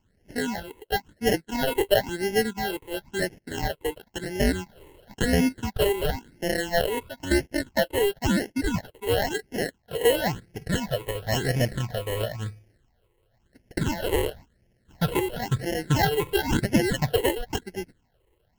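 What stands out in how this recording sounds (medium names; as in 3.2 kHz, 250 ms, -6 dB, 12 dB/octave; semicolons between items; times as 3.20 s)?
aliases and images of a low sample rate 1.2 kHz, jitter 0%; phasing stages 8, 0.97 Hz, lowest notch 200–1200 Hz; MP3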